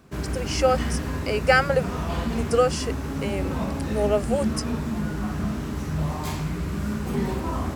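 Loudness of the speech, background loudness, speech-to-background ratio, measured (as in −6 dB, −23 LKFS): −25.0 LKFS, −28.5 LKFS, 3.5 dB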